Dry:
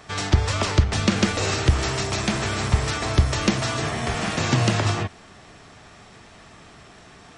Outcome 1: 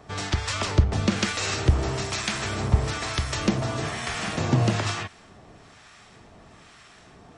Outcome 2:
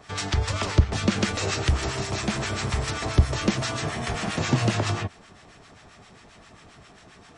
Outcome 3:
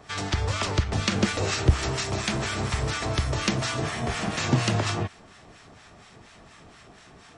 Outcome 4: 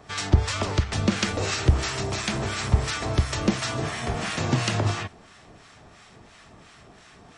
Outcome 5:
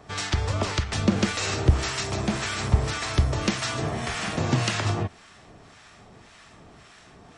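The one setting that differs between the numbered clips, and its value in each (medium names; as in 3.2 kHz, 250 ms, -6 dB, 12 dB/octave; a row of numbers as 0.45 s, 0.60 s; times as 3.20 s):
harmonic tremolo, rate: 1.1 Hz, 7.5 Hz, 4.2 Hz, 2.9 Hz, 1.8 Hz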